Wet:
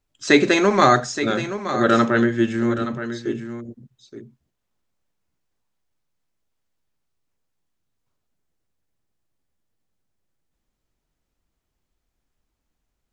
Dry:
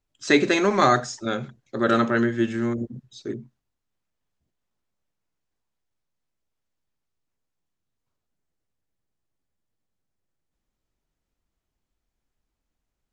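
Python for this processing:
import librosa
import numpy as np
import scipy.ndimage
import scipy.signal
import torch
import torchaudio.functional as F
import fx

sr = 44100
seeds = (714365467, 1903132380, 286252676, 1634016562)

y = x + 10.0 ** (-11.0 / 20.0) * np.pad(x, (int(872 * sr / 1000.0), 0))[:len(x)]
y = y * librosa.db_to_amplitude(3.5)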